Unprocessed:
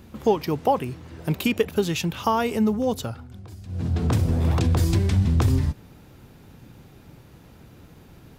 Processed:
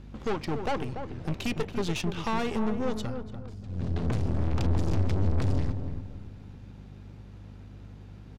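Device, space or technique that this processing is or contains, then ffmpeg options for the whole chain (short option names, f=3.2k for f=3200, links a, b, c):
valve amplifier with mains hum: -filter_complex "[0:a]lowpass=6k,asettb=1/sr,asplit=3[a][b][c];[a]atrim=end=4.344[d];[b]atrim=start=4.34:end=5.4,asetpts=PTS-STARTPTS,afade=t=in:d=0.004:c=qsin,afade=t=out:st=1.056:d=0.004:c=qsin,lowshelf=f=120:g=9.5[e];[c]atrim=start=5.396[f];[d][e]acrossfade=d=0.004:c1=hsin:c2=qsin[g];[g][f]acrossfade=d=0.004:c1=qsin:c2=hsin,aeval=exprs='(tanh(20*val(0)+0.8)-tanh(0.8))/20':c=same,aeval=exprs='val(0)+0.00631*(sin(2*PI*50*n/s)+sin(2*PI*2*50*n/s)/2+sin(2*PI*3*50*n/s)/3+sin(2*PI*4*50*n/s)/4+sin(2*PI*5*50*n/s)/5)':c=same,asplit=2[h][i];[i]adelay=289,lowpass=f=1k:p=1,volume=-6.5dB,asplit=2[j][k];[k]adelay=289,lowpass=f=1k:p=1,volume=0.34,asplit=2[l][m];[m]adelay=289,lowpass=f=1k:p=1,volume=0.34,asplit=2[n][o];[o]adelay=289,lowpass=f=1k:p=1,volume=0.34[p];[h][j][l][n][p]amix=inputs=5:normalize=0"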